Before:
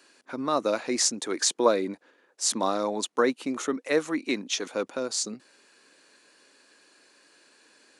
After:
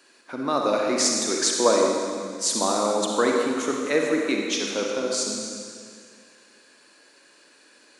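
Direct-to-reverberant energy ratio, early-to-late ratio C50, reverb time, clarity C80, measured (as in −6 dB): −0.5 dB, 0.5 dB, 2.1 s, 2.0 dB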